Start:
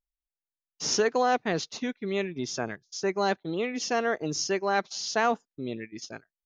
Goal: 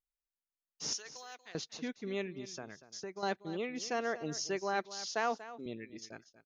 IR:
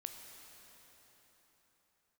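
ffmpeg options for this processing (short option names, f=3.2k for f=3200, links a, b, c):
-filter_complex "[0:a]asettb=1/sr,asplit=3[a][b][c];[a]atrim=end=0.934[d];[b]atrim=start=0.93:end=1.55,asetpts=PTS-STARTPTS,afade=t=in:d=0.004:c=qsin,afade=t=out:st=0.616:d=0.004:c=qsin,aderivative[e];[c]atrim=start=1.546[f];[d][e]acrossfade=d=0.004:c1=hsin:c2=qsin[g];[g][f]acrossfade=d=0.004:c1=qsin:c2=hsin,asettb=1/sr,asplit=3[h][i][j];[h]atrim=end=2.334[k];[i]atrim=start=2.33:end=3.23,asetpts=PTS-STARTPTS,afade=t=in:d=0.004:c=qsin,afade=t=out:st=0.896:d=0.004:c=qsin,acompressor=threshold=-34dB:ratio=4[l];[j]atrim=start=3.226[m];[k][l]acrossfade=d=0.004:c1=hsin:c2=qsin[n];[n][m]acrossfade=d=0.004:c1=qsin:c2=hsin,asettb=1/sr,asplit=3[o][p][q];[o]atrim=end=5.094[r];[p]atrim=start=5.09:end=5.66,asetpts=PTS-STARTPTS,afade=t=in:d=0.004:c=qsin,afade=t=out:st=0.566:d=0.004:c=qsin,highpass=240[s];[q]atrim=start=5.656[t];[r][s]acrossfade=d=0.004:c1=hsin:c2=qsin[u];[u][t]acrossfade=d=0.004:c1=qsin:c2=hsin,aecho=1:1:238:0.178,volume=-8dB"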